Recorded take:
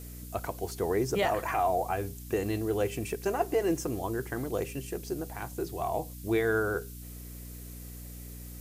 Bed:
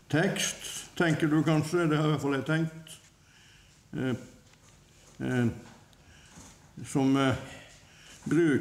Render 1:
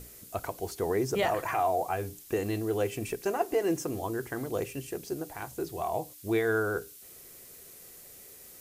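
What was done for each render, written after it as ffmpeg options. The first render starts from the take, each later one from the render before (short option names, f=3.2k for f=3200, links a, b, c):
-af "bandreject=f=60:t=h:w=6,bandreject=f=120:t=h:w=6,bandreject=f=180:t=h:w=6,bandreject=f=240:t=h:w=6,bandreject=f=300:t=h:w=6"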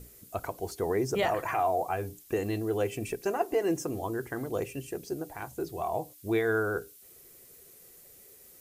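-af "afftdn=nr=6:nf=-51"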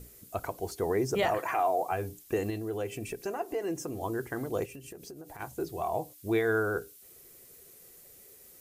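-filter_complex "[0:a]asettb=1/sr,asplit=3[a][b][c];[a]atrim=end=1.384[d];[b]atrim=start=1.38:end=1.92,asetpts=PTS-STARTPTS,afade=t=in:d=0.004:c=qsin,afade=t=out:st=0.536:d=0.004:c=qsin,highpass=210[e];[c]atrim=start=1.916[f];[d][e]acrossfade=d=0.004:c1=hsin:c2=qsin[g];[g][f]acrossfade=d=0.004:c1=qsin:c2=hsin,asettb=1/sr,asplit=3[h][i][j];[h]atrim=end=2.504[k];[i]atrim=start=2.5:end=4.01,asetpts=PTS-STARTPTS,afade=t=in:d=0.004:c=qsin,afade=t=out:st=1.506:d=0.004:c=qsin,acompressor=threshold=-38dB:ratio=1.5:attack=3.2:release=140:knee=1:detection=peak[l];[j]atrim=start=4.006[m];[k][l]acrossfade=d=0.004:c1=hsin:c2=qsin[n];[n][m]acrossfade=d=0.004:c1=qsin:c2=hsin,asplit=3[o][p][q];[o]afade=t=out:st=4.65:d=0.02[r];[p]acompressor=threshold=-41dB:ratio=16:attack=3.2:release=140:knee=1:detection=peak,afade=t=in:st=4.65:d=0.02,afade=t=out:st=5.39:d=0.02[s];[q]afade=t=in:st=5.39:d=0.02[t];[r][s][t]amix=inputs=3:normalize=0"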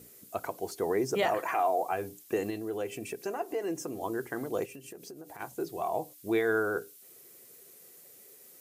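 -af "highpass=170"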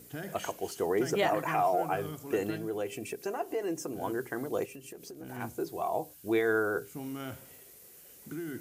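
-filter_complex "[1:a]volume=-14.5dB[a];[0:a][a]amix=inputs=2:normalize=0"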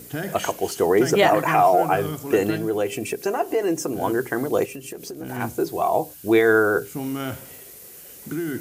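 -af "volume=11dB"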